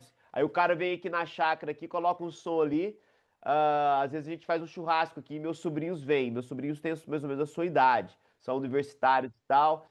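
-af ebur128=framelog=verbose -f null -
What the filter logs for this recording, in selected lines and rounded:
Integrated loudness:
  I:         -29.7 LUFS
  Threshold: -39.9 LUFS
Loudness range:
  LRA:         3.2 LU
  Threshold: -50.5 LUFS
  LRA low:   -32.4 LUFS
  LRA high:  -29.1 LUFS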